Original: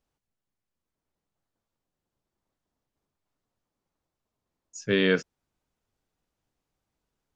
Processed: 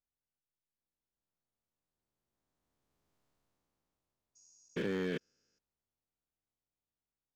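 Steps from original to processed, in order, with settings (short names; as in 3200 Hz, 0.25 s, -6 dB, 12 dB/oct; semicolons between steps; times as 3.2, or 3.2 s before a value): stepped spectrum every 0.4 s; Doppler pass-by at 3.17, 8 m/s, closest 3.1 m; slew limiter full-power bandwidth 12 Hz; gain +5 dB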